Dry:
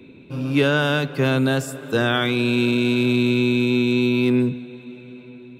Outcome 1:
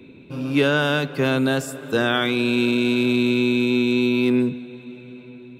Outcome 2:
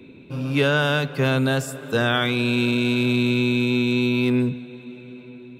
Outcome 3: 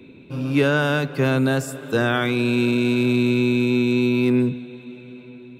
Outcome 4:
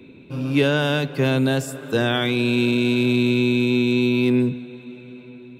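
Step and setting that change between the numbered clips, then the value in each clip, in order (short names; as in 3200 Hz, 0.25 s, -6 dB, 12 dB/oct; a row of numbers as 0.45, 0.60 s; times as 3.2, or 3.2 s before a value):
dynamic EQ, frequency: 120, 320, 3300, 1300 Hz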